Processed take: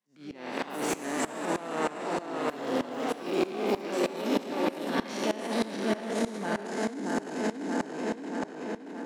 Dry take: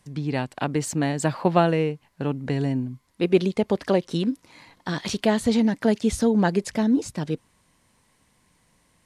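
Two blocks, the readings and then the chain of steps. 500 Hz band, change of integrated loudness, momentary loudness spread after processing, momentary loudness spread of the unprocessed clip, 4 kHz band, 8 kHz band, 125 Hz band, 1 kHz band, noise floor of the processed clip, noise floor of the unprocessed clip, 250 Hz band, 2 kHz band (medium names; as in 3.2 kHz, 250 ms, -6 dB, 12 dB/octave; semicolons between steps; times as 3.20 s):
-5.5 dB, -7.5 dB, 6 LU, 10 LU, -4.0 dB, -5.0 dB, -17.5 dB, -3.0 dB, -44 dBFS, -65 dBFS, -8.0 dB, -2.5 dB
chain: spectral sustain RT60 2.76 s; tape echo 626 ms, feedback 50%, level -3 dB, low-pass 4.8 kHz; level rider gain up to 11.5 dB; transient shaper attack -11 dB, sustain +8 dB; treble shelf 5.7 kHz -5.5 dB; peak limiter -7 dBFS, peak gain reduction 5.5 dB; peaking EQ 8.7 kHz -3 dB 0.28 oct; ever faster or slower copies 118 ms, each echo +5 st, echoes 3, each echo -6 dB; Chebyshev high-pass 230 Hz, order 3; sawtooth tremolo in dB swelling 3.2 Hz, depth 18 dB; trim -8.5 dB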